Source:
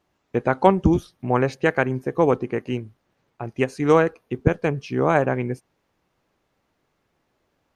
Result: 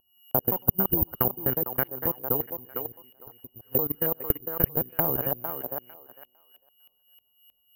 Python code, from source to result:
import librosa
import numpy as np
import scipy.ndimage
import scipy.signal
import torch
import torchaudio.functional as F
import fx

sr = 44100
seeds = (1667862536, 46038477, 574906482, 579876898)

p1 = fx.local_reverse(x, sr, ms=172.0)
p2 = p1 + 10.0 ** (-26.0 / 20.0) * np.sin(2.0 * np.pi * 2900.0 * np.arange(len(p1)) / sr)
p3 = scipy.signal.sosfilt(scipy.signal.butter(2, 4400.0, 'lowpass', fs=sr, output='sos'), p2)
p4 = p3 + fx.echo_single(p3, sr, ms=101, db=-22.0, dry=0)
p5 = np.clip(p4, -10.0 ** (-5.5 / 20.0), 10.0 ** (-5.5 / 20.0))
p6 = fx.high_shelf(p5, sr, hz=3000.0, db=-6.0)
p7 = fx.level_steps(p6, sr, step_db=21)
p8 = fx.low_shelf(p7, sr, hz=150.0, db=9.5)
p9 = fx.echo_thinned(p8, sr, ms=453, feedback_pct=22, hz=470.0, wet_db=-3.5)
p10 = fx.filter_lfo_lowpass(p9, sr, shape='saw_up', hz=3.2, low_hz=690.0, high_hz=2100.0, q=1.3)
p11 = fx.transient(p10, sr, attack_db=8, sustain_db=3)
p12 = (np.kron(scipy.signal.resample_poly(p11, 1, 3), np.eye(3)[0]) * 3)[:len(p11)]
y = p12 * 10.0 ** (-14.0 / 20.0)